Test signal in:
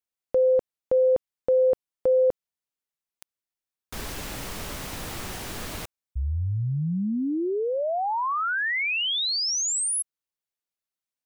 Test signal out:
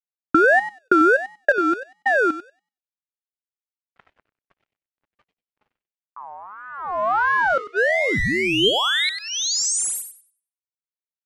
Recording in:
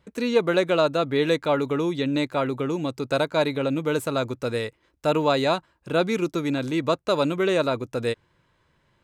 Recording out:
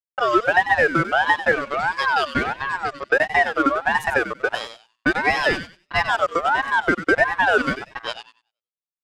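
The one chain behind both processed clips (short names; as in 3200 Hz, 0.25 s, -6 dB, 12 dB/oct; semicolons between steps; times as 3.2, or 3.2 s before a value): per-bin expansion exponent 1.5; LFO notch square 0.33 Hz 470–3300 Hz; expander -36 dBFS; resonant low shelf 170 Hz -9 dB, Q 1.5; in parallel at -2 dB: limiter -19.5 dBFS; on the sum: small resonant body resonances 560/1800 Hz, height 11 dB, ringing for 25 ms; compressor 4:1, threshold -17 dBFS; crossover distortion -35.5 dBFS; LPF 10000 Hz 12 dB/oct; low-pass opened by the level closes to 1400 Hz, open at -22 dBFS; on a send: thinning echo 95 ms, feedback 24%, high-pass 800 Hz, level -8 dB; on the sum: ring modulator with a swept carrier 1100 Hz, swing 25%, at 1.5 Hz; gain +5.5 dB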